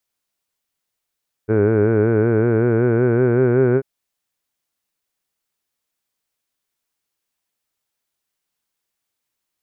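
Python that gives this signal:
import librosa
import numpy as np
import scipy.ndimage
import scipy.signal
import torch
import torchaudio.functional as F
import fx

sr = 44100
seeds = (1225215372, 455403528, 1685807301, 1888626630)

y = fx.formant_vowel(sr, seeds[0], length_s=2.34, hz=105.0, glide_st=3.5, vibrato_hz=5.3, vibrato_st=0.9, f1_hz=410.0, f2_hz=1500.0, f3_hz=2300.0)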